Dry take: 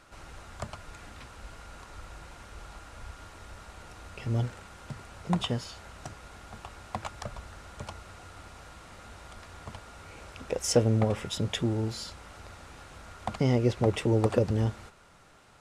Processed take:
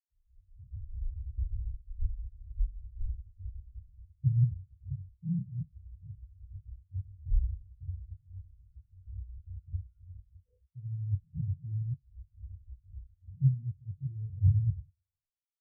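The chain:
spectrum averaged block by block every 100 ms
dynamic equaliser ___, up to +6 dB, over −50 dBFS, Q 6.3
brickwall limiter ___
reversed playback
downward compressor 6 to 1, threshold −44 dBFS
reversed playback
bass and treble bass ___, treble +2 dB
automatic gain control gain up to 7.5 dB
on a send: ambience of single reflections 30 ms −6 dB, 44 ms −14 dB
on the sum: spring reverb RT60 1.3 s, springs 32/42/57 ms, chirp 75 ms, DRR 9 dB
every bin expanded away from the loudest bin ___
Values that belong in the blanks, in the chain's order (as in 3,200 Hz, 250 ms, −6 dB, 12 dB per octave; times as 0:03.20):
150 Hz, −24.5 dBFS, +14 dB, 4 to 1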